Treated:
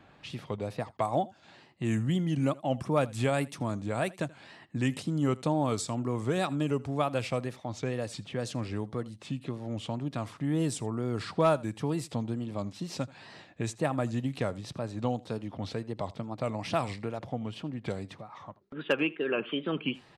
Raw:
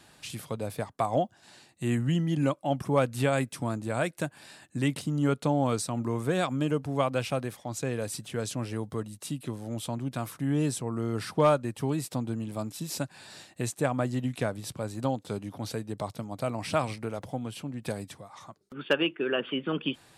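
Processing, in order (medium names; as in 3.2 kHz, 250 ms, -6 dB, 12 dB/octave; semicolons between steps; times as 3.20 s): level-controlled noise filter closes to 2.2 kHz, open at -22.5 dBFS; wow and flutter 130 cents; in parallel at -3 dB: compression, threshold -37 dBFS, peak gain reduction 18.5 dB; on the sum: band-stop 1.5 kHz, Q 18; delay 81 ms -22 dB; trim -3 dB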